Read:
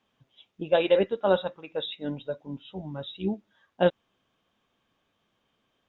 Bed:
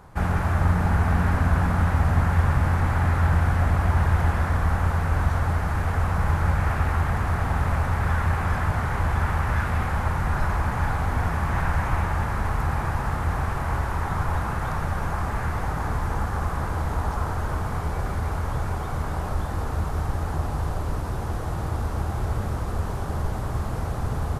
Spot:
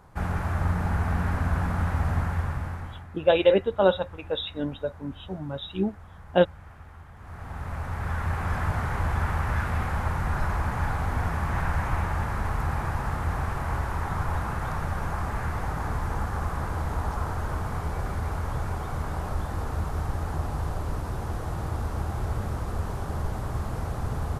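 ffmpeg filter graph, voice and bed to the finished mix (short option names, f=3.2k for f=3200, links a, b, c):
-filter_complex "[0:a]adelay=2550,volume=2.5dB[a];[1:a]volume=15.5dB,afade=t=out:st=2.12:d=0.95:silence=0.11885,afade=t=in:st=7.16:d=1.5:silence=0.0944061[b];[a][b]amix=inputs=2:normalize=0"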